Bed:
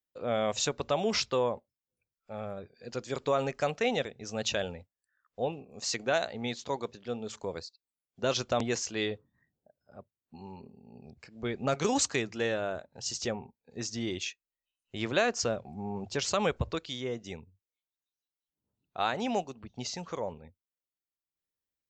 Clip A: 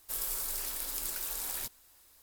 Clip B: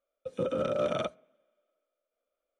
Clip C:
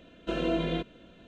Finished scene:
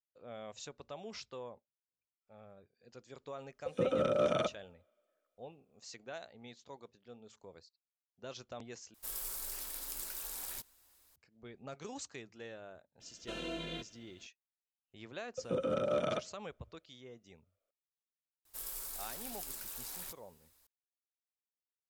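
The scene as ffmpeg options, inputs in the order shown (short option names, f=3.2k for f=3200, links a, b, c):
-filter_complex "[2:a]asplit=2[a][b];[1:a]asplit=2[c][d];[0:a]volume=-17.5dB[e];[3:a]crystalizer=i=6.5:c=0[f];[e]asplit=2[g][h];[g]atrim=end=8.944[i];[c]atrim=end=2.22,asetpts=PTS-STARTPTS,volume=-6dB[j];[h]atrim=start=11.156[k];[a]atrim=end=2.59,asetpts=PTS-STARTPTS,volume=-1dB,afade=t=in:d=0.004:c=hsin,afade=t=out:st=2.586:d=0.004:c=hsin,adelay=3400[l];[f]atrim=end=1.27,asetpts=PTS-STARTPTS,volume=-14.5dB,afade=t=in:d=0.004:c=hsin,afade=t=out:st=1.266:d=0.004:c=hsin,adelay=573300S[m];[b]atrim=end=2.59,asetpts=PTS-STARTPTS,volume=-3.5dB,afade=t=in:d=0.004:c=hsin,afade=t=out:st=2.586:d=0.004:c=hsin,adelay=15120[n];[d]atrim=end=2.22,asetpts=PTS-STARTPTS,volume=-8dB,afade=t=in:d=0.004:c=hsin,afade=t=out:st=2.216:d=0.004:c=hsin,adelay=18450[o];[i][j]acrossfade=d=0.004:c1=hsin:c2=hsin[p];[p][k]acrossfade=d=0.004:c1=hsin:c2=hsin[q];[q][l][m][n][o]amix=inputs=5:normalize=0"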